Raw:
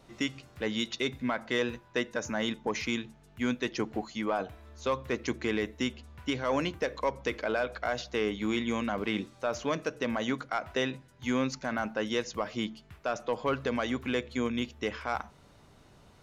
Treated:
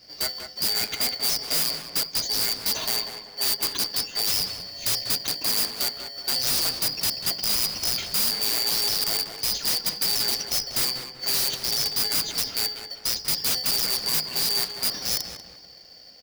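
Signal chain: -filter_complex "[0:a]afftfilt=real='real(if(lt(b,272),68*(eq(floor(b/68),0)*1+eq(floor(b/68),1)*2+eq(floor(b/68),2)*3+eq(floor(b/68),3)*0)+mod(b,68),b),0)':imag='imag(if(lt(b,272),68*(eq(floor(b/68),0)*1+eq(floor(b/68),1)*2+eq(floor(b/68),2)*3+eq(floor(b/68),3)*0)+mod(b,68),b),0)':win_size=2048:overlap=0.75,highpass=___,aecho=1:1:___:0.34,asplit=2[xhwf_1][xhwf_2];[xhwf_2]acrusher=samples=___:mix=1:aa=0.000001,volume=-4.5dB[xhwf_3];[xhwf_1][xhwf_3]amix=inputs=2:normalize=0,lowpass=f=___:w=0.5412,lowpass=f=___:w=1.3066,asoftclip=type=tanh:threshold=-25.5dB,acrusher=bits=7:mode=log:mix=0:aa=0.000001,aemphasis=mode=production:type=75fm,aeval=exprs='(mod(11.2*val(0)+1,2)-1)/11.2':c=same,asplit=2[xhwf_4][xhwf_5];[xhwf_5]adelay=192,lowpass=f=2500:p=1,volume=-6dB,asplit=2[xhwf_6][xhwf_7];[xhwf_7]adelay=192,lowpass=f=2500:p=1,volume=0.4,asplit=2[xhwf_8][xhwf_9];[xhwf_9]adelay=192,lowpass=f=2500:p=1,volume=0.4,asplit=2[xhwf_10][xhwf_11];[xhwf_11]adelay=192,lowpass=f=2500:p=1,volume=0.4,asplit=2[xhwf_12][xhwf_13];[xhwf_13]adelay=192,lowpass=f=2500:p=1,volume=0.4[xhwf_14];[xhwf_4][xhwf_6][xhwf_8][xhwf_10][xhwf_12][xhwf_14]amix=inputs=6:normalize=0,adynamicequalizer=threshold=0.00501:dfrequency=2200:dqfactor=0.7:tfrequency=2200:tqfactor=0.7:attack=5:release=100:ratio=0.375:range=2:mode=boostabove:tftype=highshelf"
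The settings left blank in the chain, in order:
150, 2.9, 35, 5600, 5600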